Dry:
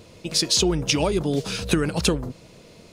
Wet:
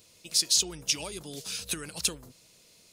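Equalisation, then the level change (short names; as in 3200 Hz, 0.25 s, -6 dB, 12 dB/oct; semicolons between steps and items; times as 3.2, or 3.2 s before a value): pre-emphasis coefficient 0.9; 0.0 dB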